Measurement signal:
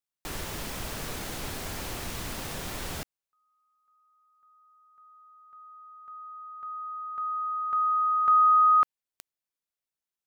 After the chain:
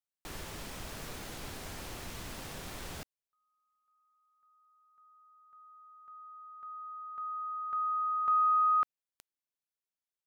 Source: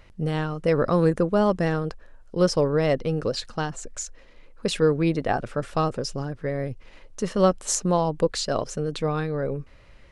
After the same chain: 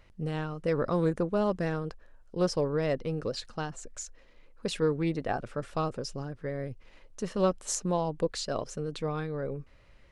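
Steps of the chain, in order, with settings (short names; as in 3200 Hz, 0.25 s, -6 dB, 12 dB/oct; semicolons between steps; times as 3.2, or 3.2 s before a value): Doppler distortion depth 0.11 ms; gain -7 dB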